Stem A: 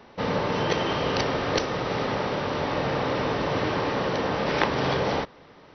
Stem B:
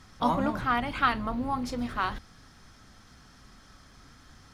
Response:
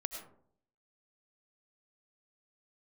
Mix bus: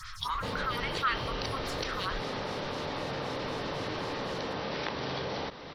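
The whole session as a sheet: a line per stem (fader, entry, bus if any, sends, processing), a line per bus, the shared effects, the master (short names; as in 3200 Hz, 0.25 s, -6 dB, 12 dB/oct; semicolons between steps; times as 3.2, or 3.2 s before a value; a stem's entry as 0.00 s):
-9.5 dB, 0.25 s, no send, compressor 2:1, threshold -41 dBFS, peak gain reduction 13 dB
-2.5 dB, 0.00 s, no send, elliptic band-stop 110–1200 Hz, stop band 40 dB; photocell phaser 3.9 Hz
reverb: off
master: bell 4200 Hz +6.5 dB 0.97 oct; fast leveller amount 50%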